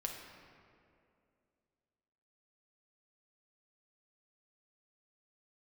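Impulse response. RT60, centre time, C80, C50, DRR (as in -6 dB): 2.5 s, 66 ms, 5.0 dB, 3.5 dB, 1.0 dB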